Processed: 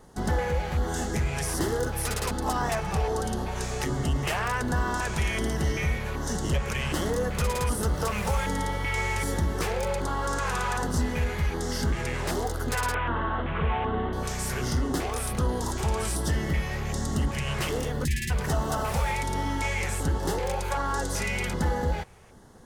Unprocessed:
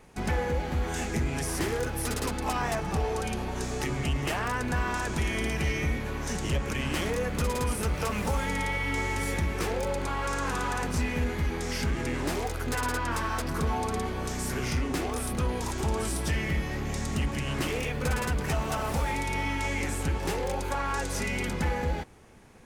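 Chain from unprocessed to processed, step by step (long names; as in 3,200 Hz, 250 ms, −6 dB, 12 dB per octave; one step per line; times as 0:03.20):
0:12.94–0:14.13: linear delta modulator 16 kbit/s, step −31.5 dBFS
0:18.05–0:18.30: time-frequency box erased 380–1,600 Hz
auto-filter notch square 1.3 Hz 280–2,400 Hz
level +2.5 dB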